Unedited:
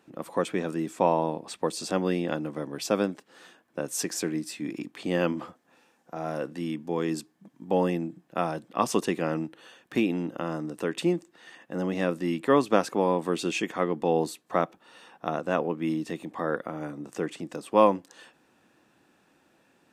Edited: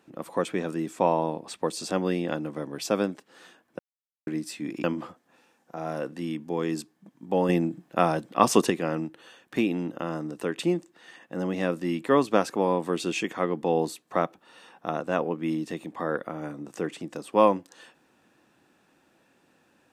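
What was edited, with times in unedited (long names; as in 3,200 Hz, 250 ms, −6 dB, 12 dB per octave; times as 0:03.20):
0:03.79–0:04.27: silence
0:04.84–0:05.23: remove
0:07.88–0:09.09: clip gain +5.5 dB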